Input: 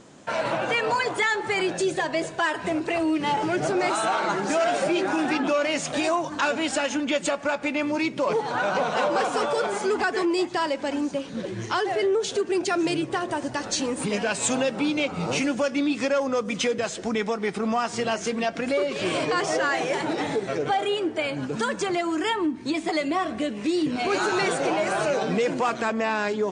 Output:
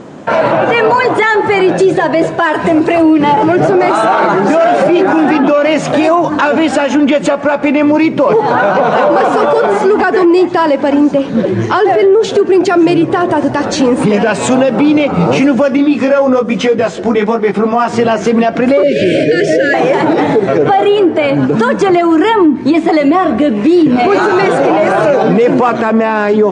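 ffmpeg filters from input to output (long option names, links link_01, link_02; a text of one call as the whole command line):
ffmpeg -i in.wav -filter_complex "[0:a]asettb=1/sr,asplit=3[link_01][link_02][link_03];[link_01]atrim=end=2.524[link_04];[link_02]atrim=start=2.52:end=3.02,asetpts=PTS-STARTPTS,afade=type=in:duration=0.004:curve=qsin,afade=type=out:start_time=0.496:duration=0.004:curve=qsin,highshelf=frequency=6000:gain=9[link_05];[link_03]atrim=start=3.016[link_06];[link_04][link_05]acrossfade=duration=0.004:curve1=hsin:curve2=qsin[link_07];[link_07][link_06]acrossfade=duration=0.004:curve1=qsin:curve2=hsin,asettb=1/sr,asplit=3[link_08][link_09][link_10];[link_08]atrim=end=15.774[link_11];[link_09]atrim=start=15.77:end=17.88,asetpts=PTS-STARTPTS,afade=type=in:duration=0.004:curve=qsin,afade=type=out:start_time=2.106:duration=0.004:curve=qsin,flanger=delay=15:depth=5.3:speed=1.1[link_12];[link_10]atrim=start=17.876[link_13];[link_11][link_12]acrossfade=duration=0.004:curve1=hsin:curve2=qsin[link_14];[link_14][link_13]acrossfade=duration=0.004:curve1=qsin:curve2=hsin,asettb=1/sr,asplit=3[link_15][link_16][link_17];[link_15]atrim=end=18.834[link_18];[link_16]atrim=start=18.83:end=19.74,asetpts=PTS-STARTPTS,afade=type=in:duration=0.004:curve=qsin,afade=type=out:start_time=0.906:duration=0.004:curve=qsin,asuperstop=centerf=1000:order=12:qfactor=1.1[link_19];[link_17]atrim=start=19.736[link_20];[link_18][link_19]acrossfade=duration=0.004:curve1=hsin:curve2=qsin[link_21];[link_21][link_20]acrossfade=duration=0.004:curve1=qsin:curve2=hsin,lowpass=frequency=1000:poles=1,lowshelf=frequency=67:gain=-11.5,alimiter=level_in=22dB:limit=-1dB:release=50:level=0:latency=1,volume=-1dB" out.wav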